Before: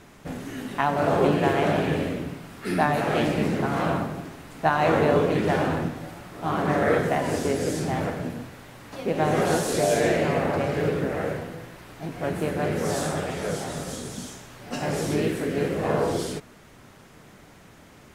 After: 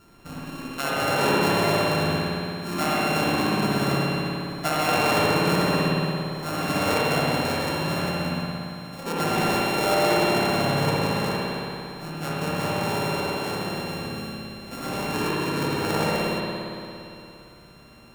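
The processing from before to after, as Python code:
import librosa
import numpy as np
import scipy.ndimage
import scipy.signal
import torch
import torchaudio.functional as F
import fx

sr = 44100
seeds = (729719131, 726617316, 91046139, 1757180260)

y = np.r_[np.sort(x[:len(x) // 32 * 32].reshape(-1, 32), axis=1).ravel(), x[len(x) // 32 * 32:]]
y = fx.echo_alternate(y, sr, ms=119, hz=960.0, feedback_pct=57, wet_db=-12.0)
y = fx.rev_spring(y, sr, rt60_s=2.8, pass_ms=(57,), chirp_ms=55, drr_db=-6.0)
y = y * librosa.db_to_amplitude(-6.0)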